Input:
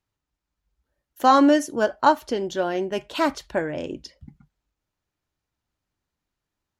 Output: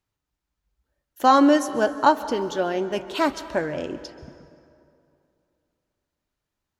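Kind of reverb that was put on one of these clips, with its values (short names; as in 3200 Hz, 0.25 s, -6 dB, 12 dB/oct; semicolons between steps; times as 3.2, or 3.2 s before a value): plate-style reverb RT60 2.6 s, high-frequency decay 0.6×, pre-delay 0.12 s, DRR 13.5 dB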